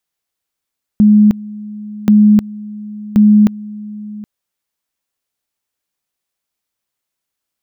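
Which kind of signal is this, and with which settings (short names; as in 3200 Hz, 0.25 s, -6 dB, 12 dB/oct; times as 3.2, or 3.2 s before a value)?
two-level tone 210 Hz -4 dBFS, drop 20.5 dB, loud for 0.31 s, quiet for 0.77 s, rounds 3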